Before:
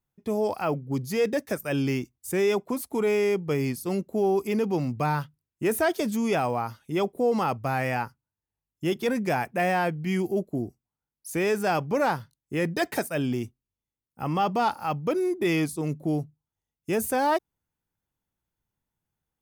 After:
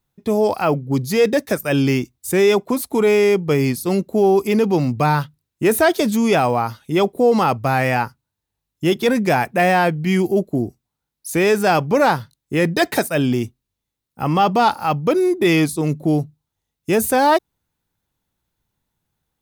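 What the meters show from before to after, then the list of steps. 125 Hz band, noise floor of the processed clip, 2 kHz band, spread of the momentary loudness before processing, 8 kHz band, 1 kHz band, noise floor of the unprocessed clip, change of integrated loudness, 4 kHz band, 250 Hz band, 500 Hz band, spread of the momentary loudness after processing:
+9.0 dB, -81 dBFS, +9.0 dB, 7 LU, +9.0 dB, +9.0 dB, under -85 dBFS, +9.0 dB, +10.5 dB, +9.0 dB, +9.0 dB, 7 LU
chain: peaking EQ 3.9 kHz +6 dB 0.29 oct; trim +9 dB

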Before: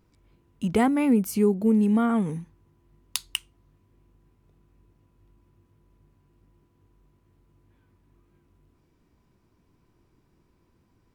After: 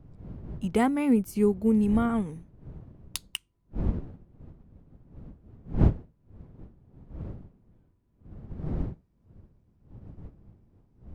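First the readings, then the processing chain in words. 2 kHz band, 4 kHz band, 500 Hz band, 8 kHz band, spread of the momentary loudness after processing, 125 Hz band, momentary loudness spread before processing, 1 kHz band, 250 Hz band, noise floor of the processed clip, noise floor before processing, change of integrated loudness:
-3.0 dB, -5.5 dB, -2.0 dB, -6.0 dB, 22 LU, +4.5 dB, 13 LU, -2.5 dB, -2.0 dB, -68 dBFS, -67 dBFS, -3.5 dB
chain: wind noise 150 Hz -32 dBFS; upward expansion 1.5:1, over -43 dBFS

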